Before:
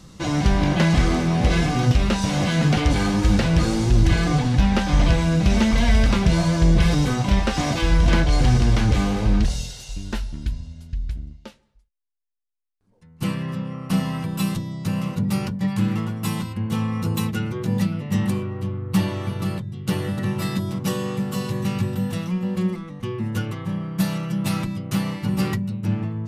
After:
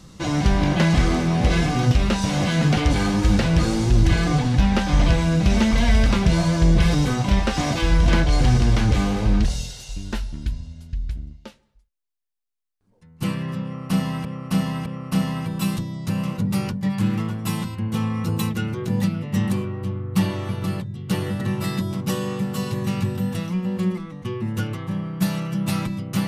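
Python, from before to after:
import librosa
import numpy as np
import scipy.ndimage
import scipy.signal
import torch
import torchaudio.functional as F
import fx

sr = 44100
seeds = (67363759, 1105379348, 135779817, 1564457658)

y = fx.edit(x, sr, fx.repeat(start_s=13.64, length_s=0.61, count=3), tone=tone)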